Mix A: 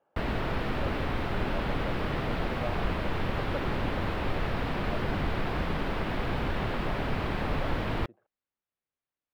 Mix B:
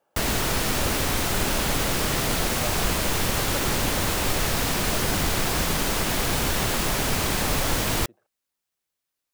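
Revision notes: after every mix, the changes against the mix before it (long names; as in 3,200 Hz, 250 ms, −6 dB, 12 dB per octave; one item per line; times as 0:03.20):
background +3.5 dB
master: remove high-frequency loss of the air 420 metres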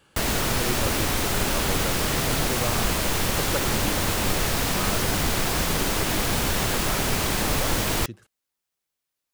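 speech: remove resonant band-pass 670 Hz, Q 3.3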